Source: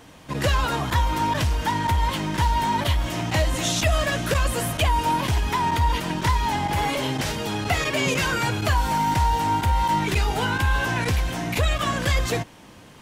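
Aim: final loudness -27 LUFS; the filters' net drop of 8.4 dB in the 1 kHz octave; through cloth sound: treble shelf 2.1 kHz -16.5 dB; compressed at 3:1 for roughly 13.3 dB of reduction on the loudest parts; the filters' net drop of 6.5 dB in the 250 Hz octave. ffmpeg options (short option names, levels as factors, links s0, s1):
-af "equalizer=f=250:t=o:g=-9,equalizer=f=1000:t=o:g=-5.5,acompressor=threshold=0.0141:ratio=3,highshelf=f=2100:g=-16.5,volume=3.98"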